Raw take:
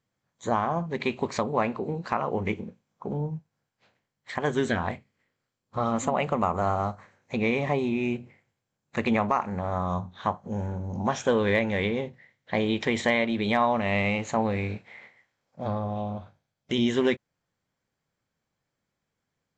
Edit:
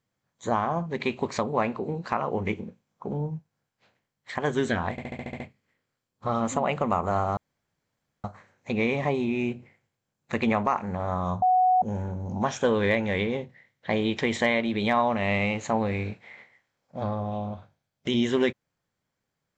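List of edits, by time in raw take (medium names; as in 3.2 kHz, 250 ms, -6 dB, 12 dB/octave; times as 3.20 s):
4.91 s: stutter 0.07 s, 8 plays
6.88 s: insert room tone 0.87 s
10.06–10.46 s: bleep 739 Hz -17 dBFS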